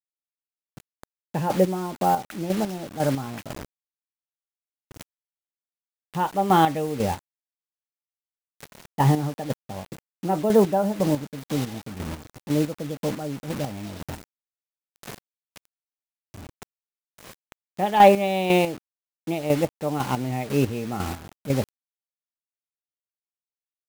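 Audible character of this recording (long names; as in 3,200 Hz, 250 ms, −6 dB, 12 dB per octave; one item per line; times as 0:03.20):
a quantiser's noise floor 6 bits, dither none
chopped level 2 Hz, depth 60%, duty 30%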